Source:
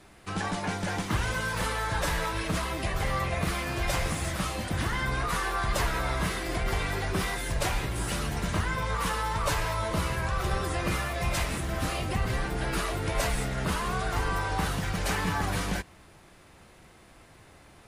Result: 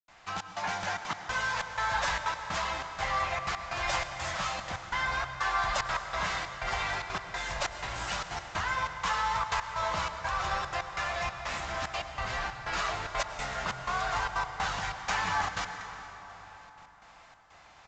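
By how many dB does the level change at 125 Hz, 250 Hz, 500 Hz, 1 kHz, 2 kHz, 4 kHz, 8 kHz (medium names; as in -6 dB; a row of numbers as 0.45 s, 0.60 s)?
-12.5 dB, -14.0 dB, -5.5 dB, +1.0 dB, 0.0 dB, -1.5 dB, -5.0 dB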